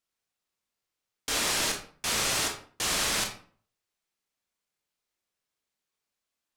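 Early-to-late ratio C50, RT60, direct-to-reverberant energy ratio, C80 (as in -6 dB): 7.0 dB, 0.45 s, 2.0 dB, 12.0 dB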